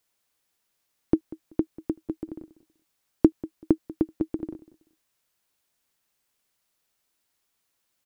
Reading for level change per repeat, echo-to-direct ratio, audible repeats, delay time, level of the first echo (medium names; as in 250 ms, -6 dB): -13.0 dB, -19.0 dB, 2, 191 ms, -19.0 dB